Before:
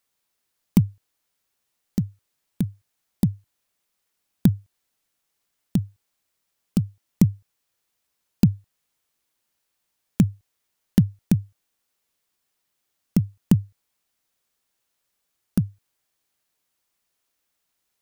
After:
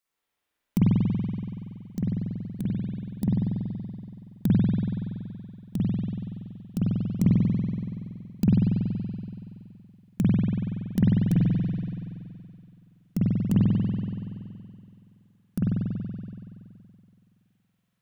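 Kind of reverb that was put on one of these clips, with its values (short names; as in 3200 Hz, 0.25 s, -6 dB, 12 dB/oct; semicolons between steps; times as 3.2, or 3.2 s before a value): spring tank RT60 2.5 s, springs 47 ms, chirp 75 ms, DRR -9 dB; gain -9 dB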